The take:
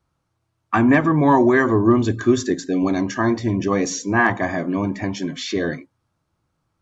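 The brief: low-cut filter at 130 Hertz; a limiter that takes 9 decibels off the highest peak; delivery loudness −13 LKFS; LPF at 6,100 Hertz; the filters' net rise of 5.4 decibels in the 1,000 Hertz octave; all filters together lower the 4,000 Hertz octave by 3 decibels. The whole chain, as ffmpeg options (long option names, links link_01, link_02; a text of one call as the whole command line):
ffmpeg -i in.wav -af "highpass=130,lowpass=6100,equalizer=frequency=1000:width_type=o:gain=6.5,equalizer=frequency=4000:width_type=o:gain=-3,volume=7.5dB,alimiter=limit=-1.5dB:level=0:latency=1" out.wav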